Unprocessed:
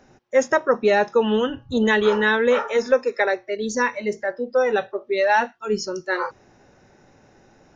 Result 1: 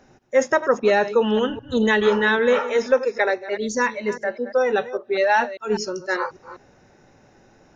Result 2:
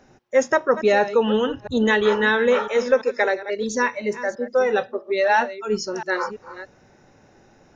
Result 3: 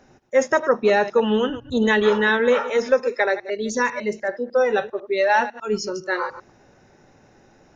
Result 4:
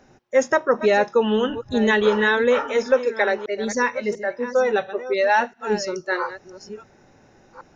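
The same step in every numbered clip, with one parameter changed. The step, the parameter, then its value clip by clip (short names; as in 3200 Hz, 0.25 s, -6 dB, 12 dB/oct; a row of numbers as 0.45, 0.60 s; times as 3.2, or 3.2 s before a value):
reverse delay, time: 0.199, 0.335, 0.1, 0.692 s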